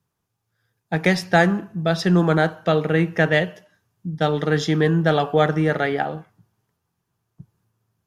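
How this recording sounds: noise floor -78 dBFS; spectral tilt -5.5 dB/oct

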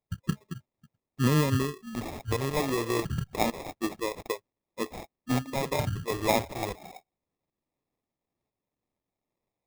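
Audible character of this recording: phasing stages 2, 0.28 Hz, lowest notch 200–1300 Hz; aliases and images of a low sample rate 1500 Hz, jitter 0%; tremolo saw up 2 Hz, depth 40%

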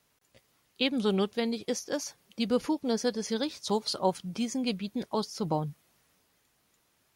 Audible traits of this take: noise floor -72 dBFS; spectral tilt -4.5 dB/oct

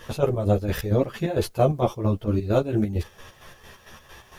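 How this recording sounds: chopped level 4.4 Hz, depth 60%, duty 50%; a quantiser's noise floor 12-bit, dither triangular; a shimmering, thickened sound

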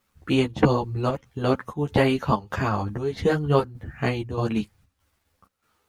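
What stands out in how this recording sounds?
a quantiser's noise floor 12-bit, dither none; chopped level 1.6 Hz, depth 60%, duty 75%; a shimmering, thickened sound

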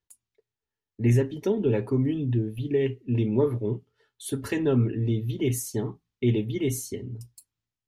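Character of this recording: noise floor -90 dBFS; spectral tilt -9.0 dB/oct

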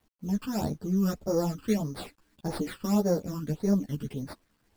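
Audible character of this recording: aliases and images of a low sample rate 6200 Hz, jitter 0%; phasing stages 12, 1.7 Hz, lowest notch 650–3000 Hz; a quantiser's noise floor 12-bit, dither none; a shimmering, thickened sound

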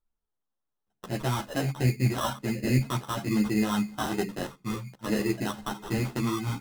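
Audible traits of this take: phasing stages 6, 1.2 Hz, lowest notch 420–1200 Hz; aliases and images of a low sample rate 2300 Hz, jitter 0%; a shimmering, thickened sound

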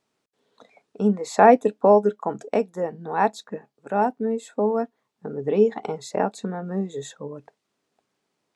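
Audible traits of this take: noise floor -78 dBFS; spectral tilt -3.0 dB/oct

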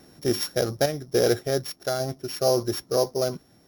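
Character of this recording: a buzz of ramps at a fixed pitch in blocks of 8 samples; random-step tremolo 3.5 Hz

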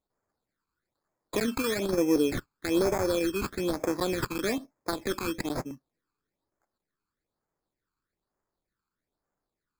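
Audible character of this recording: aliases and images of a low sample rate 2900 Hz, jitter 0%; phasing stages 12, 1.1 Hz, lowest notch 600–3800 Hz

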